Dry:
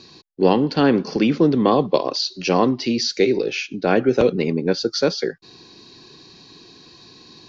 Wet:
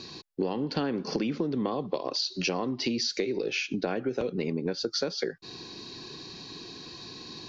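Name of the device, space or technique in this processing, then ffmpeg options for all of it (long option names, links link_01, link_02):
serial compression, leveller first: -af "acompressor=threshold=-20dB:ratio=2,acompressor=threshold=-29dB:ratio=6,volume=2.5dB"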